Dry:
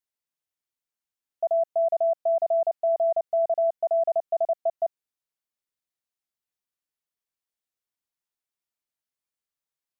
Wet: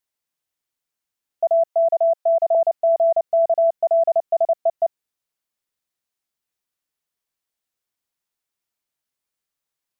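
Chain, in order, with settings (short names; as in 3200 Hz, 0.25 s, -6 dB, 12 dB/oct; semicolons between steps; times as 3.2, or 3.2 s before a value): 1.68–2.55 HPF 510 Hz 24 dB/oct; gain +6 dB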